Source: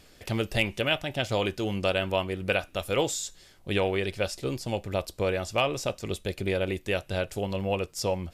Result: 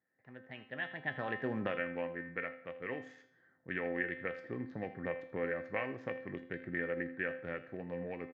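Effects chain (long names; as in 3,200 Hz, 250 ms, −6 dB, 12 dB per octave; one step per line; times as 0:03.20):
adaptive Wiener filter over 15 samples
source passing by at 0:01.69, 34 m/s, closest 1.8 metres
camcorder AGC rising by 9.8 dB per second
high-pass filter 130 Hz 24 dB per octave
low-shelf EQ 280 Hz +6 dB
downward compressor 2.5 to 1, threshold −36 dBFS, peak gain reduction 11.5 dB
low-pass with resonance 1,800 Hz, resonance Q 12
tuned comb filter 260 Hz, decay 0.46 s, harmonics all, mix 80%
single-tap delay 81 ms −17 dB
on a send at −22 dB: convolution reverb RT60 0.70 s, pre-delay 124 ms
on the sum: level +9.5 dB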